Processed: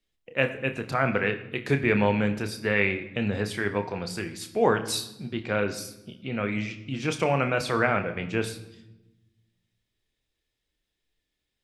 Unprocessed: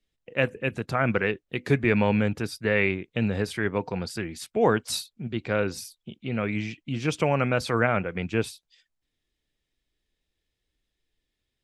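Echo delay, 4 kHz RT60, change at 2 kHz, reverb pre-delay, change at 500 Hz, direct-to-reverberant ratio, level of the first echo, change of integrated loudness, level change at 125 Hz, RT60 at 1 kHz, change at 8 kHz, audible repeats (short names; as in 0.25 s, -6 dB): none, 0.75 s, +0.5 dB, 30 ms, -0.5 dB, 7.0 dB, none, -0.5 dB, -2.0 dB, 0.90 s, +0.5 dB, none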